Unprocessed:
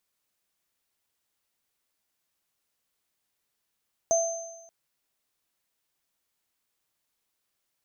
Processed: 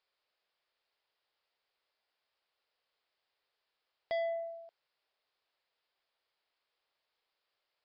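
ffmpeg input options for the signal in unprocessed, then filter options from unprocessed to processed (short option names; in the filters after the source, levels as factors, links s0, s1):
-f lavfi -i "aevalsrc='0.106*pow(10,-3*t/1.03)*sin(2*PI*668*t)+0.0668*pow(10,-3*t/1.12)*sin(2*PI*6250*t)':d=0.58:s=44100"
-af "lowshelf=f=340:t=q:w=1.5:g=-10.5,aresample=11025,asoftclip=type=tanh:threshold=0.0266,aresample=44100"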